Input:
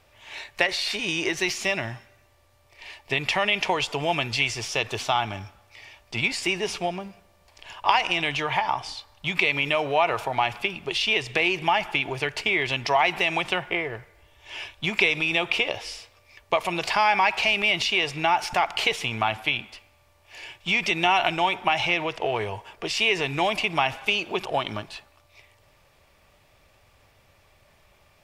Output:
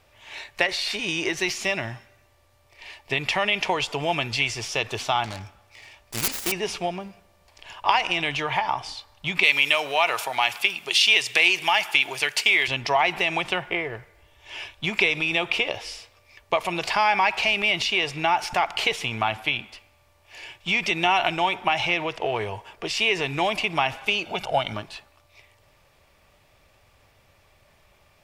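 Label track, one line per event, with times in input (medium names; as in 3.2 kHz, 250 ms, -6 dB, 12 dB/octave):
5.240000	6.520000	self-modulated delay depth 0.95 ms
9.430000	12.680000	tilt EQ +4 dB/octave
24.250000	24.740000	comb 1.4 ms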